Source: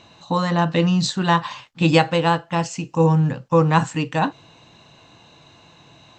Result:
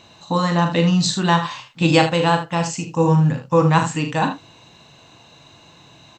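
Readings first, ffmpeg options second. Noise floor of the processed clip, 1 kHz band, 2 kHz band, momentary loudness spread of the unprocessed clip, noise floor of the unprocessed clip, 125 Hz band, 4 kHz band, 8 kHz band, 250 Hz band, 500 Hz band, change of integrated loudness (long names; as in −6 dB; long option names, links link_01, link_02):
−49 dBFS, +1.0 dB, +1.5 dB, 8 LU, −51 dBFS, +1.5 dB, +2.5 dB, +5.0 dB, +1.5 dB, +1.0 dB, +1.5 dB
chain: -filter_complex "[0:a]highshelf=frequency=7100:gain=8,asplit=2[link_01][link_02];[link_02]aecho=0:1:40|77:0.422|0.316[link_03];[link_01][link_03]amix=inputs=2:normalize=0"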